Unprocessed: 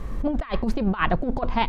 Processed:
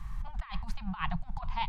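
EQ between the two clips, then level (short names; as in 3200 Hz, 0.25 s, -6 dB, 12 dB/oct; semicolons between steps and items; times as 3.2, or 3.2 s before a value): elliptic band-stop 170–830 Hz, stop band 40 dB; dynamic EQ 1500 Hz, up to -7 dB, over -42 dBFS, Q 1.7; -7.0 dB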